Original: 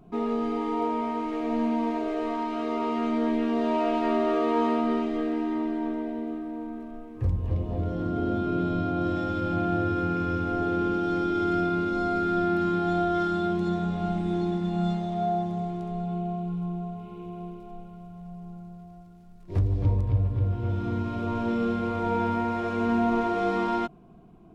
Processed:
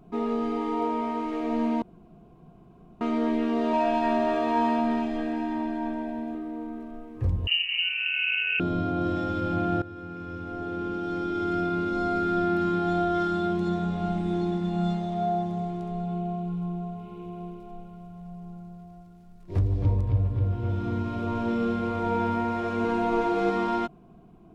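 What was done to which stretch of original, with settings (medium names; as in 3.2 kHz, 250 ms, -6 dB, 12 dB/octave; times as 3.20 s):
1.82–3.01 s: room tone
3.73–6.35 s: comb 1.2 ms
7.47–8.60 s: frequency inversion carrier 2.9 kHz
9.82–12.07 s: fade in, from -16 dB
22.84–23.50 s: comb 6.2 ms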